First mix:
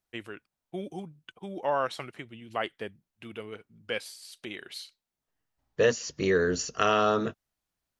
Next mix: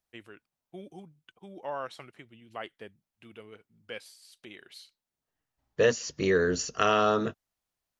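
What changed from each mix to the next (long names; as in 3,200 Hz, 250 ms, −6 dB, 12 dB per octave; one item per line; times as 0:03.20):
first voice −8.0 dB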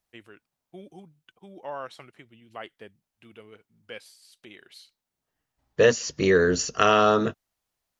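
second voice +5.0 dB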